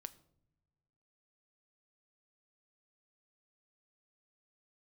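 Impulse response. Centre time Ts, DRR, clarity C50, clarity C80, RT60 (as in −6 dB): 4 ms, 12.5 dB, 18.5 dB, 21.0 dB, non-exponential decay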